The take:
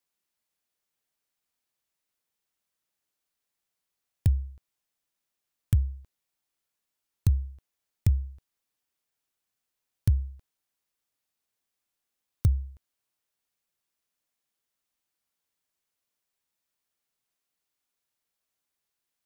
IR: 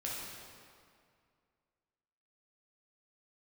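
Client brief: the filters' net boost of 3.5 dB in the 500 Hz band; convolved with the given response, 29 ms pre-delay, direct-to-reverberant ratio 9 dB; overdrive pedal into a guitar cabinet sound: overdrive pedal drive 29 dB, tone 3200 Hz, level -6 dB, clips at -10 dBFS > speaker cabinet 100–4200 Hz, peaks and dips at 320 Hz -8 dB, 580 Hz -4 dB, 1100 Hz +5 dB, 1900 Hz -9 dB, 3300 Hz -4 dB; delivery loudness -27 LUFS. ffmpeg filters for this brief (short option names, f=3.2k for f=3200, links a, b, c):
-filter_complex "[0:a]equalizer=f=500:t=o:g=8,asplit=2[a][b];[1:a]atrim=start_sample=2205,adelay=29[c];[b][c]afir=irnorm=-1:irlink=0,volume=-11.5dB[d];[a][d]amix=inputs=2:normalize=0,asplit=2[e][f];[f]highpass=f=720:p=1,volume=29dB,asoftclip=type=tanh:threshold=-10dB[g];[e][g]amix=inputs=2:normalize=0,lowpass=f=3.2k:p=1,volume=-6dB,highpass=100,equalizer=f=320:t=q:w=4:g=-8,equalizer=f=580:t=q:w=4:g=-4,equalizer=f=1.1k:t=q:w=4:g=5,equalizer=f=1.9k:t=q:w=4:g=-9,equalizer=f=3.3k:t=q:w=4:g=-4,lowpass=f=4.2k:w=0.5412,lowpass=f=4.2k:w=1.3066,volume=6.5dB"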